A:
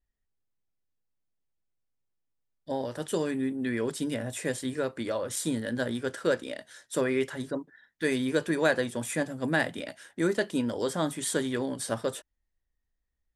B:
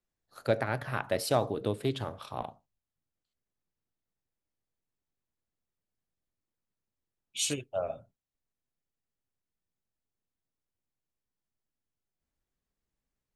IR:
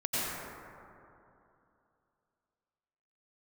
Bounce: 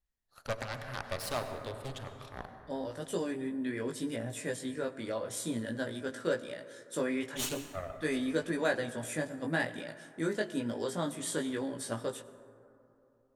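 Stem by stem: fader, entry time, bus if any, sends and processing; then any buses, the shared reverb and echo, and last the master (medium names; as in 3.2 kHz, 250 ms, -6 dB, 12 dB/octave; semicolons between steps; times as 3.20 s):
-3.0 dB, 0.00 s, send -23 dB, chorus 0.92 Hz, delay 17 ms, depth 2.3 ms
-8.0 dB, 0.00 s, send -14.5 dB, peaking EQ 320 Hz -7 dB 1.7 oct; Chebyshev shaper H 8 -13 dB, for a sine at -14 dBFS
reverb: on, RT60 2.8 s, pre-delay 82 ms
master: none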